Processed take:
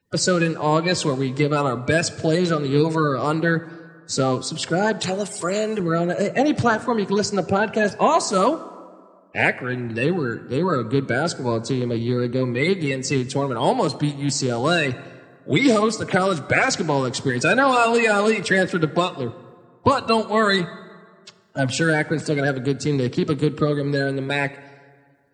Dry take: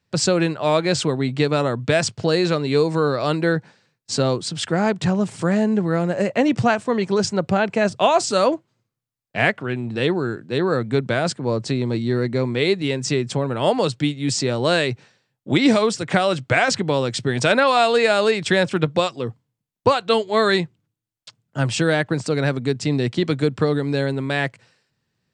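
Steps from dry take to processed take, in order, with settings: bin magnitudes rounded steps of 30 dB; 4.99–5.8 tilt +3 dB/oct; plate-style reverb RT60 1.9 s, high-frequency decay 0.55×, DRR 15 dB

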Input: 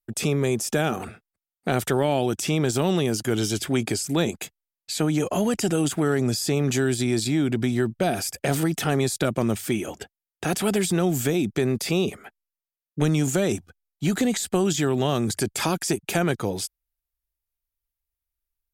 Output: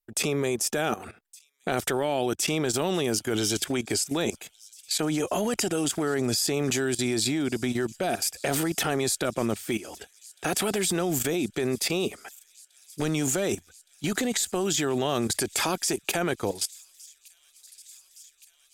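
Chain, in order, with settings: bell 140 Hz -8.5 dB 1.7 oct; level quantiser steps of 15 dB; on a send: thin delay 1.166 s, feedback 81%, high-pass 4800 Hz, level -20 dB; on the sum: gain +4 dB

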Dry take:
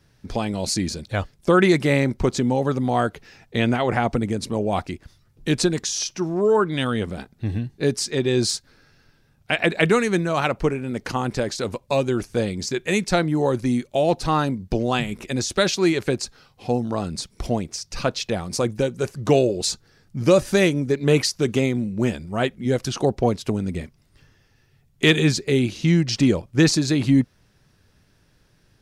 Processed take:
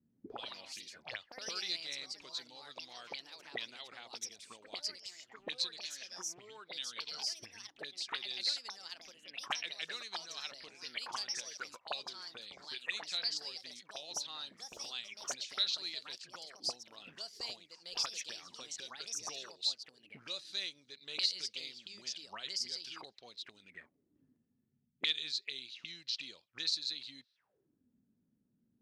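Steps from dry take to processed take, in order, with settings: auto-wah 220–4000 Hz, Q 8, up, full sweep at -19.5 dBFS; echoes that change speed 0.133 s, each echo +3 st, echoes 2; gain -1.5 dB

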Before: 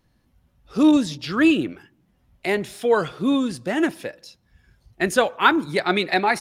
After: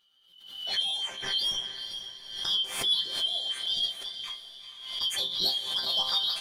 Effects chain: four-band scrambler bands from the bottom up 3412; bell 1700 Hz +4.5 dB 0.45 oct; notch 5300 Hz, Q 9.2; in parallel at +0.5 dB: compressor, threshold -29 dBFS, peak gain reduction 17 dB; on the sum: soft clip -8 dBFS, distortion -19 dB; resonator bank C3 sus4, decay 0.21 s; on a send: diffused feedback echo 0.457 s, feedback 41%, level -9 dB; on the sum: backwards sustainer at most 70 dB/s; gain +1 dB

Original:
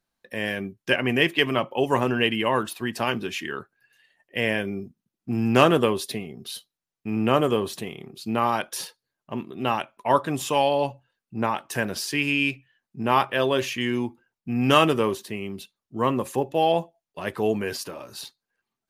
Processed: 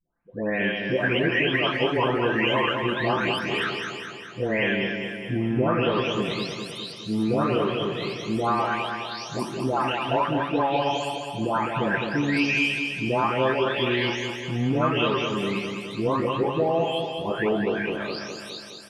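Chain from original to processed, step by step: spectral delay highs late, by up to 0.662 s; LPF 3700 Hz 12 dB/oct; de-hum 46.02 Hz, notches 19; compressor, threshold -27 dBFS, peak gain reduction 12.5 dB; on a send: feedback echo 0.207 s, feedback 59%, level -5.5 dB; on the sum: gain +6.5 dB

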